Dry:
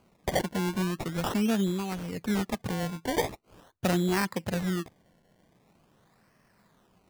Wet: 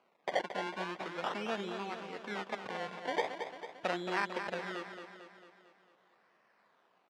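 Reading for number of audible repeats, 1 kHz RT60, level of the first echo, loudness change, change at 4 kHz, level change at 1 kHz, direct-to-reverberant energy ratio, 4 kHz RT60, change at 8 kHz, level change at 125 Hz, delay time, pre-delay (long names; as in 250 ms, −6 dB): 6, no reverb audible, −8.0 dB, −8.0 dB, −6.0 dB, −2.0 dB, no reverb audible, no reverb audible, −16.5 dB, −20.0 dB, 224 ms, no reverb audible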